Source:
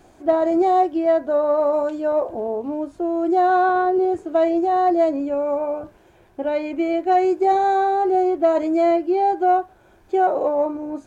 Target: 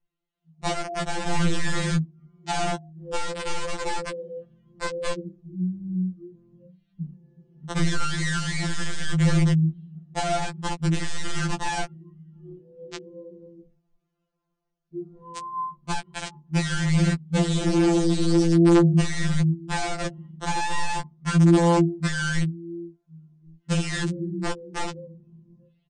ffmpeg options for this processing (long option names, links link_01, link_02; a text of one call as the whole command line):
ffmpeg -i in.wav -filter_complex "[0:a]equalizer=frequency=580:width=0.56:gain=-8.5,asplit=2[link_01][link_02];[link_02]adelay=458,lowpass=frequency=1600:poles=1,volume=-21.5dB,asplit=2[link_03][link_04];[link_04]adelay=458,lowpass=frequency=1600:poles=1,volume=0.16[link_05];[link_01][link_03][link_05]amix=inputs=3:normalize=0,afftdn=noise_reduction=28:noise_floor=-34,dynaudnorm=framelen=160:gausssize=3:maxgain=7dB,lowshelf=frequency=150:gain=-3.5,aeval=exprs='(mod(5.01*val(0)+1,2)-1)/5.01':channel_layout=same,asetrate=18846,aresample=44100,acrossover=split=420[link_06][link_07];[link_07]acompressor=threshold=-23dB:ratio=4[link_08];[link_06][link_08]amix=inputs=2:normalize=0,afftfilt=real='re*2.83*eq(mod(b,8),0)':imag='im*2.83*eq(mod(b,8),0)':win_size=2048:overlap=0.75" out.wav